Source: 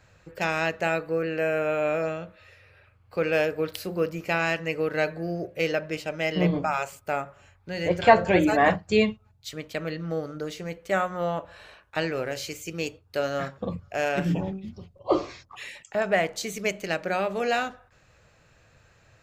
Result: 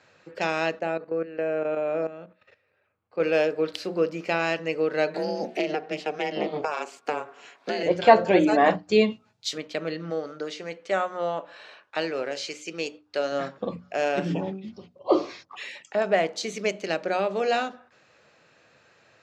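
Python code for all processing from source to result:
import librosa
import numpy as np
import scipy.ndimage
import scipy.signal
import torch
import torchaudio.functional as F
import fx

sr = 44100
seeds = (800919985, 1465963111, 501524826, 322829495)

y = fx.chain(x, sr, fx.high_shelf(hz=2000.0, db=-10.5),
    fx.level_steps(step_db=14), at=(0.79, 3.2))
y = fx.chain(y, sr, fx.steep_highpass(hz=230.0, slope=36),
    fx.ring_mod(carrier_hz=150.0),
    fx.band_squash(depth_pct=100), at=(5.14, 7.83))
y = fx.chain(y, sr, fx.high_shelf(hz=3500.0, db=10.0),
    fx.doubler(ms=17.0, db=-5.5), at=(9.1, 9.58))
y = fx.chain(y, sr, fx.lowpass(hz=11000.0, slope=24),
    fx.low_shelf(hz=280.0, db=-7.5), at=(10.1, 13.32))
y = fx.hum_notches(y, sr, base_hz=60, count=5)
y = fx.dynamic_eq(y, sr, hz=1900.0, q=1.0, threshold_db=-38.0, ratio=4.0, max_db=-5)
y = scipy.signal.sosfilt(scipy.signal.cheby1(2, 1.0, [250.0, 5100.0], 'bandpass', fs=sr, output='sos'), y)
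y = y * librosa.db_to_amplitude(3.0)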